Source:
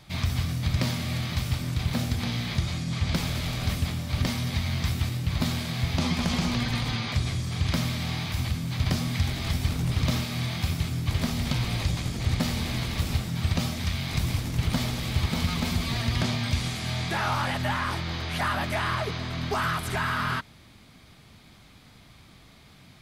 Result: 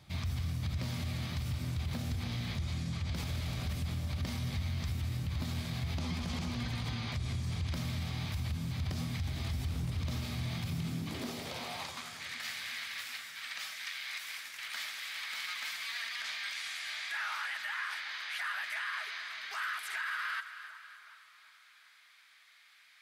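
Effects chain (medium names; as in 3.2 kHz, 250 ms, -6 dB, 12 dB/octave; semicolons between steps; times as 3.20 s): high-pass sweep 69 Hz -> 1.7 kHz, 10.37–12.23 s; two-band feedback delay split 1.5 kHz, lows 371 ms, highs 278 ms, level -14.5 dB; peak limiter -20 dBFS, peak gain reduction 10.5 dB; trim -8 dB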